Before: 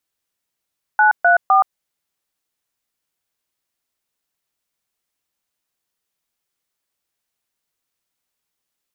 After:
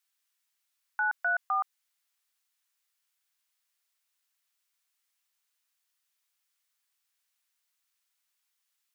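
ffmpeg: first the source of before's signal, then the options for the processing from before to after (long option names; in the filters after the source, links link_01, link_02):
-f lavfi -i "aevalsrc='0.251*clip(min(mod(t,0.255),0.123-mod(t,0.255))/0.002,0,1)*(eq(floor(t/0.255),0)*(sin(2*PI*852*mod(t,0.255))+sin(2*PI*1477*mod(t,0.255)))+eq(floor(t/0.255),1)*(sin(2*PI*697*mod(t,0.255))+sin(2*PI*1477*mod(t,0.255)))+eq(floor(t/0.255),2)*(sin(2*PI*770*mod(t,0.255))+sin(2*PI*1209*mod(t,0.255))))':duration=0.765:sample_rate=44100"
-af "highpass=1200,alimiter=limit=-21.5dB:level=0:latency=1:release=23"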